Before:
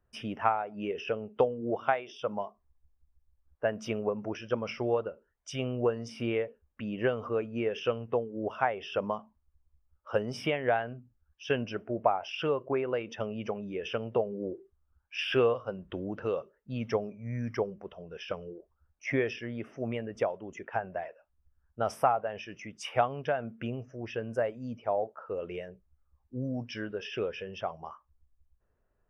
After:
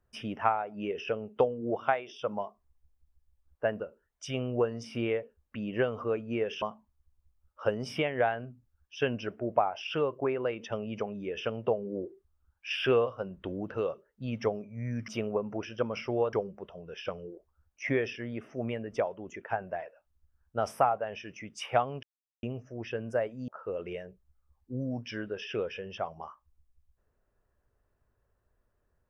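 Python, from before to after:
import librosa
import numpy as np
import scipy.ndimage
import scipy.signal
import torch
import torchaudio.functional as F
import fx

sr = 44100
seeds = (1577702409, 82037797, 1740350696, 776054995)

y = fx.edit(x, sr, fx.move(start_s=3.8, length_s=1.25, to_s=17.56),
    fx.cut(start_s=7.87, length_s=1.23),
    fx.silence(start_s=23.26, length_s=0.4),
    fx.cut(start_s=24.71, length_s=0.4), tone=tone)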